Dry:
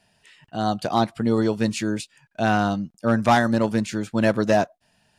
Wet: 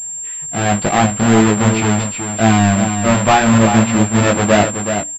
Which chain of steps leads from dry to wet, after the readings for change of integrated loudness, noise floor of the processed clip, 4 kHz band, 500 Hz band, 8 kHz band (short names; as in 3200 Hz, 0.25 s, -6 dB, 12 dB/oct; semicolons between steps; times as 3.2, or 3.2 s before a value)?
+8.5 dB, -27 dBFS, +9.5 dB, +6.5 dB, +21.5 dB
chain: half-waves squared off; in parallel at +2 dB: limiter -15 dBFS, peak gain reduction 7.5 dB; on the sum: chorus 0.81 Hz, delay 18 ms, depth 2.5 ms; notches 60/120/180/240/300 Hz; on a send: echo 0.375 s -7.5 dB; on the sum: pulse-width modulation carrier 7400 Hz; gain +2 dB